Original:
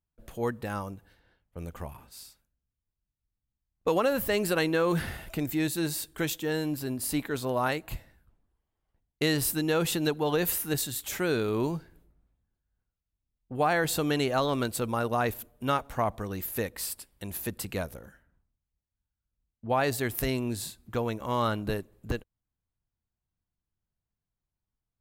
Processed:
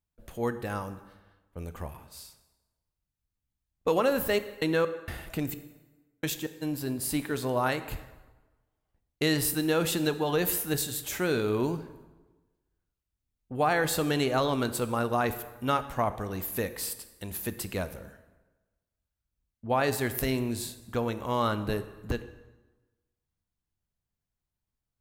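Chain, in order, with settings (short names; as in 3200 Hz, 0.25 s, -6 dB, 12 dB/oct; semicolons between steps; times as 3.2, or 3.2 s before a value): 4.22–6.61 step gate "x.x.xx..." 65 bpm -60 dB; plate-style reverb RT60 1.2 s, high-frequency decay 0.75×, DRR 11 dB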